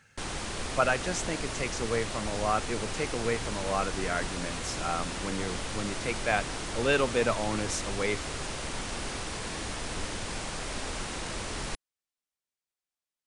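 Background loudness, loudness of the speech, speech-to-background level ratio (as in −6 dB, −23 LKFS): −35.5 LKFS, −32.0 LKFS, 3.5 dB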